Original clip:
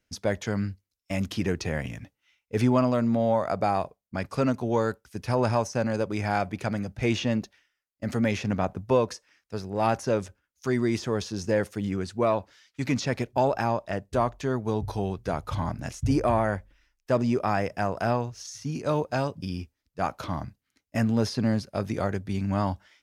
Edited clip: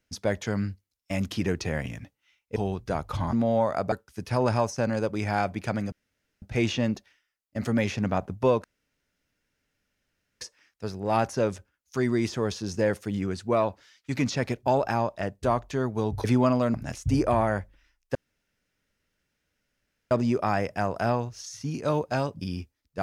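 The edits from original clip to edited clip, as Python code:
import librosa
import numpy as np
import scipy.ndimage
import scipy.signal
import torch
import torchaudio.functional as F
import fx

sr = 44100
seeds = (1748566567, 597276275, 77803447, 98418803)

y = fx.edit(x, sr, fx.swap(start_s=2.56, length_s=0.5, other_s=14.94, other_length_s=0.77),
    fx.cut(start_s=3.65, length_s=1.24),
    fx.insert_room_tone(at_s=6.89, length_s=0.5),
    fx.insert_room_tone(at_s=9.11, length_s=1.77),
    fx.insert_room_tone(at_s=17.12, length_s=1.96), tone=tone)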